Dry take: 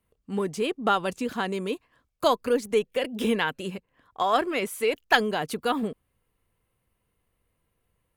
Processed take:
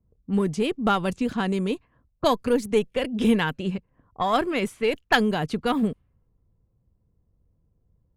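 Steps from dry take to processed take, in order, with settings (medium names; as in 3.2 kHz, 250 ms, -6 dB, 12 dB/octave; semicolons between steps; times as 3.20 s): Chebyshev shaper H 8 -31 dB, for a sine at -4.5 dBFS; tone controls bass +11 dB, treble +1 dB; level-controlled noise filter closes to 630 Hz, open at -20 dBFS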